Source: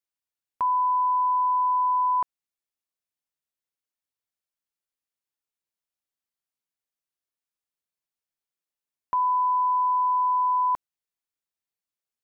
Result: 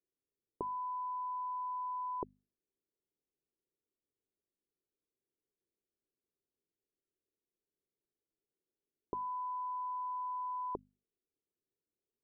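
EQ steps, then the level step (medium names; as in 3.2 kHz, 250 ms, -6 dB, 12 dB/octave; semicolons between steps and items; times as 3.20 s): four-pole ladder low-pass 450 Hz, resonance 60%; hum notches 50/100/150/200/250 Hz; +14.5 dB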